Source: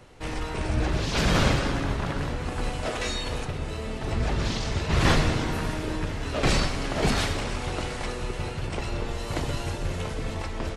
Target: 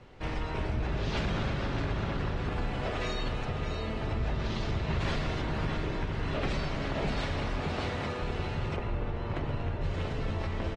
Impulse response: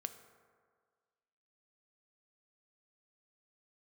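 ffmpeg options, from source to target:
-filter_complex "[0:a]lowpass=4.3k,aecho=1:1:613|1226|1839|2452|3065:0.355|0.145|0.0596|0.0245|0.01,asoftclip=type=tanh:threshold=-14.5dB,asettb=1/sr,asplit=3[a][b][c];[a]atrim=end=5.004[d];[b]atrim=start=5:end=5.41,asetpts=PTS-STARTPTS,afade=t=in:d=0.004:c=qsin,afade=t=out:st=0.406:d=0.004:c=qsin,highshelf=f=3k:g=5.5[e];[c]atrim=start=5.406[f];[d][e]acrossfade=d=0.004:c1=hsin:c2=qsin[g];[g][f]acrossfade=d=0.004:c1=qsin:c2=hsin,asettb=1/sr,asplit=3[h][i][j];[h]atrim=end=7.614[k];[i]atrim=start=7.61:end=8.22,asetpts=PTS-STARTPTS,afade=t=in:d=0.004:c=qsin,afade=t=out:st=0.606:d=0.004:c=qsin,highpass=f=59:w=0.5412,highpass=f=59:w=1.3066[l];[j]atrim=start=8.216[m];[k][l]acrossfade=d=0.004:c1=hsin:c2=qsin[n];[n][m]acrossfade=d=0.004:c1=qsin:c2=hsin,asplit=3[o][p][q];[o]afade=t=out:st=8.75:d=0.02[r];[p]adynamicsmooth=sensitivity=2.5:basefreq=2.1k,afade=t=in:st=8.75:d=0.02,afade=t=out:st=9.81:d=0.02[s];[q]afade=t=in:st=9.81:d=0.02[t];[r][s][t]amix=inputs=3:normalize=0[u];[1:a]atrim=start_sample=2205,asetrate=38808,aresample=44100[v];[u][v]afir=irnorm=-1:irlink=0,acompressor=threshold=-28dB:ratio=12,asoftclip=type=hard:threshold=-24dB,lowshelf=f=240:g=3.5,volume=-1.5dB" -ar 48000 -c:a aac -b:a 32k

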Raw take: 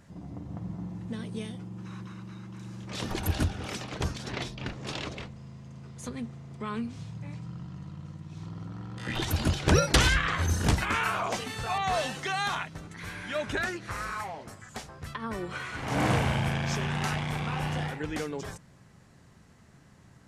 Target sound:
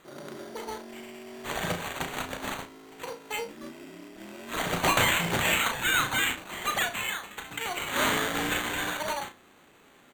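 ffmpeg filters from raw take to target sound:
-filter_complex "[0:a]bass=f=250:g=-12,treble=f=4k:g=-5,asplit=2[a][b];[b]aeval=exprs='0.0596*(abs(mod(val(0)/0.0596+3,4)-2)-1)':c=same,volume=-4.5dB[c];[a][c]amix=inputs=2:normalize=0,acrusher=samples=17:mix=1:aa=0.000001,asplit=2[d][e];[e]adelay=69,lowpass=f=4.7k:p=1,volume=-6dB,asplit=2[f][g];[g]adelay=69,lowpass=f=4.7k:p=1,volume=0.32,asplit=2[h][i];[i]adelay=69,lowpass=f=4.7k:p=1,volume=0.32,asplit=2[j][k];[k]adelay=69,lowpass=f=4.7k:p=1,volume=0.32[l];[d][f][h][j][l]amix=inputs=5:normalize=0,asetrate=88200,aresample=44100"

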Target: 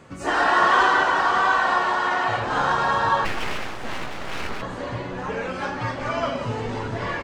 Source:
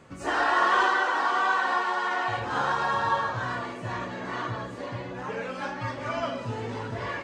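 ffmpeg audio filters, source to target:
-filter_complex "[0:a]asplit=8[a][b][c][d][e][f][g][h];[b]adelay=178,afreqshift=-96,volume=-10dB[i];[c]adelay=356,afreqshift=-192,volume=-14.9dB[j];[d]adelay=534,afreqshift=-288,volume=-19.8dB[k];[e]adelay=712,afreqshift=-384,volume=-24.6dB[l];[f]adelay=890,afreqshift=-480,volume=-29.5dB[m];[g]adelay=1068,afreqshift=-576,volume=-34.4dB[n];[h]adelay=1246,afreqshift=-672,volume=-39.3dB[o];[a][i][j][k][l][m][n][o]amix=inputs=8:normalize=0,asplit=3[p][q][r];[p]afade=t=out:st=3.24:d=0.02[s];[q]aeval=exprs='abs(val(0))':c=same,afade=t=in:st=3.24:d=0.02,afade=t=out:st=4.61:d=0.02[t];[r]afade=t=in:st=4.61:d=0.02[u];[s][t][u]amix=inputs=3:normalize=0,volume=4.5dB"

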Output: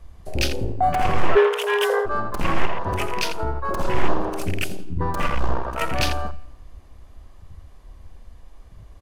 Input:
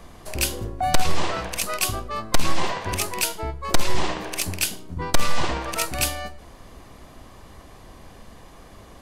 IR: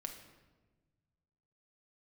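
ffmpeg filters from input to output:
-filter_complex "[0:a]aeval=exprs='0.15*(abs(mod(val(0)/0.15+3,4)-2)-1)':c=same,asettb=1/sr,asplit=3[a][b][c];[a]atrim=end=5.284[d];[b]atrim=start=5.28:end=5.81,asetpts=PTS-STARTPTS,afade=t=in:d=0.004:c=qsin,afade=t=out:st=0.526:d=0.004:c=qsin,tremolo=f=62:d=0.788[e];[c]atrim=start=5.806[f];[d][e]acrossfade=d=0.004:c1=hsin:c2=qsin[g];[g][f]acrossfade=d=0.004:c1=qsin:c2=hsin,asplit=2[h][i];[i]adelay=84,lowpass=f=4.5k:p=1,volume=-6.5dB,asplit=2[j][k];[k]adelay=84,lowpass=f=4.5k:p=1,volume=0.44,asplit=2[l][m];[m]adelay=84,lowpass=f=4.5k:p=1,volume=0.44,asplit=2[n][o];[o]adelay=84,lowpass=f=4.5k:p=1,volume=0.44,asplit=2[p][q];[q]adelay=84,lowpass=f=4.5k:p=1,volume=0.44[r];[h][j][l][n][p][r]amix=inputs=6:normalize=0,afwtdn=0.0316,asplit=2[s][t];[1:a]atrim=start_sample=2205[u];[t][u]afir=irnorm=-1:irlink=0,volume=-13dB[v];[s][v]amix=inputs=2:normalize=0,asplit=3[w][x][y];[w]afade=t=out:st=1.35:d=0.02[z];[x]afreqshift=410,afade=t=in:st=1.35:d=0.02,afade=t=out:st=2.05:d=0.02[aa];[y]afade=t=in:st=2.05:d=0.02[ab];[z][aa][ab]amix=inputs=3:normalize=0,asettb=1/sr,asplit=3[ac][ad][ae];[ac]atrim=end=2.654[af];[ad]atrim=start=2.65:end=3.69,asetpts=PTS-STARTPTS,afade=t=in:d=0.004:c=qsin,afade=t=out:st=1.036:d=0.004:c=qsin,acompressor=threshold=-23dB:ratio=2[ag];[ae]atrim=start=3.686[ah];[af][ag]acrossfade=d=0.004:c1=hsin:c2=qsin[ai];[ai][ah]acrossfade=d=0.004:c1=qsin:c2=hsin,volume=3.5dB"

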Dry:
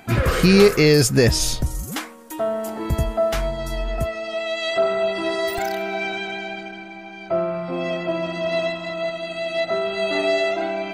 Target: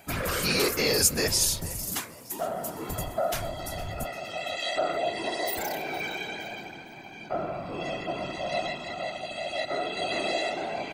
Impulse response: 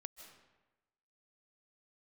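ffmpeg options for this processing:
-filter_complex "[0:a]asettb=1/sr,asplit=3[a][b][c];[a]atrim=end=4.974[d];[b]atrim=start=4.97:end=5.87,asetpts=PTS-STARTPTS,afade=t=in:d=0.004:c=qsin,afade=t=out:st=0.896:d=0.004:c=qsin,bandreject=f=1.3k:w=9.1[e];[c]atrim=start=5.866[f];[d][e]acrossfade=d=0.004:c1=hsin:c2=qsin[g];[g][f]acrossfade=d=0.004:c1=qsin:c2=hsin,afftfilt=real='hypot(re,im)*cos(2*PI*random(0))':imag='hypot(re,im)*sin(2*PI*random(1))':win_size=512:overlap=0.75,acrossover=split=530[h][i];[h]asoftclip=type=tanh:threshold=-27.5dB[j];[i]aemphasis=mode=production:type=50kf[k];[j][k]amix=inputs=2:normalize=0,bandreject=f=60:t=h:w=6,bandreject=f=120:t=h:w=6,asplit=2[l][m];[m]asplit=3[n][o][p];[n]adelay=463,afreqshift=76,volume=-18dB[q];[o]adelay=926,afreqshift=152,volume=-26.4dB[r];[p]adelay=1389,afreqshift=228,volume=-34.8dB[s];[q][r][s]amix=inputs=3:normalize=0[t];[l][t]amix=inputs=2:normalize=0,volume=-2dB"

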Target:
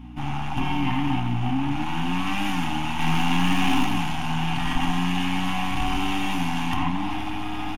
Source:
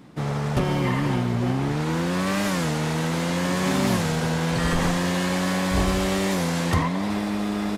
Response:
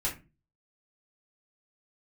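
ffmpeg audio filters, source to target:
-filter_complex "[0:a]asettb=1/sr,asplit=3[a][b][c];[a]atrim=end=2.994[d];[b]atrim=start=2.99:end=3.85,asetpts=PTS-STARTPTS,afade=t=in:d=0.004:c=qsin,afade=t=out:st=0.856:d=0.004:c=qsin,acontrast=85[e];[c]atrim=start=3.846[f];[d][e]acrossfade=d=0.004:c1=hsin:c2=qsin[g];[g][f]acrossfade=d=0.004:c1=qsin:c2=hsin,aeval=exprs='(tanh(14.1*val(0)+0.55)-tanh(0.55))/14.1':c=same,bandreject=f=7.8k:w=5.7,asplit=2[h][i];[1:a]atrim=start_sample=2205[j];[i][j]afir=irnorm=-1:irlink=0,volume=-8.5dB[k];[h][k]amix=inputs=2:normalize=0,aeval=exprs='val(0)+0.0158*(sin(2*PI*60*n/s)+sin(2*PI*2*60*n/s)/2+sin(2*PI*3*60*n/s)/3+sin(2*PI*4*60*n/s)/4+sin(2*PI*5*60*n/s)/5)':c=same,firequalizer=gain_entry='entry(180,0);entry(270,11);entry(490,-25);entry(760,10);entry(1300,2);entry(1800,0);entry(2800,13);entry(4100,-5);entry(6200,-1)':delay=0.05:min_phase=1,volume=-4.5dB"

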